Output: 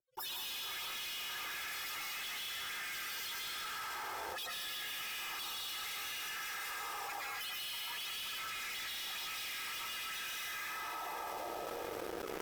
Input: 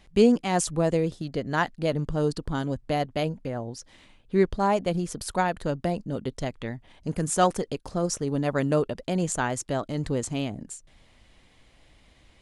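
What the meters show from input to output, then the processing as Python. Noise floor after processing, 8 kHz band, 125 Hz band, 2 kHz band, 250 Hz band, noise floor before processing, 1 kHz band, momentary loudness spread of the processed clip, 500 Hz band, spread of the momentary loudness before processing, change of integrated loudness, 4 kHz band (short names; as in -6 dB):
-43 dBFS, -9.0 dB, -35.0 dB, -4.0 dB, -30.0 dB, -58 dBFS, -13.5 dB, 2 LU, -23.0 dB, 11 LU, -12.5 dB, +1.5 dB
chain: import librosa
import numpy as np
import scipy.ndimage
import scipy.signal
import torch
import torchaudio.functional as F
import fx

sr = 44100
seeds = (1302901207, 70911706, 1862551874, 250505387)

y = fx.spec_flatten(x, sr, power=0.2)
y = fx.highpass(y, sr, hz=81.0, slope=6)
y = fx.spec_gate(y, sr, threshold_db=-25, keep='weak')
y = y + 0.61 * np.pad(y, (int(2.4 * sr / 1000.0), 0))[:len(y)]
y = fx.echo_diffused(y, sr, ms=563, feedback_pct=58, wet_db=-7.5)
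y = fx.rider(y, sr, range_db=5, speed_s=0.5)
y = fx.auto_wah(y, sr, base_hz=340.0, top_hz=3300.0, q=3.4, full_db=-45.0, direction='up')
y = fx.rev_freeverb(y, sr, rt60_s=1.5, hf_ratio=1.0, predelay_ms=95, drr_db=-5.5)
y = fx.leveller(y, sr, passes=5)
y = fx.env_flatten(y, sr, amount_pct=100)
y = y * 10.0 ** (9.0 / 20.0)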